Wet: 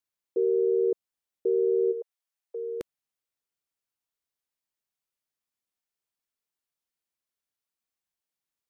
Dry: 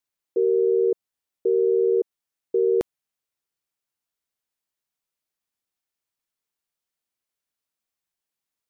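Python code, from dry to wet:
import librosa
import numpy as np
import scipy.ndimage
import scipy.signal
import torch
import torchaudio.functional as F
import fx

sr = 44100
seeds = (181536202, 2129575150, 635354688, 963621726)

y = fx.steep_highpass(x, sr, hz=520.0, slope=36, at=(1.91, 2.8), fade=0.02)
y = y * librosa.db_to_amplitude(-4.0)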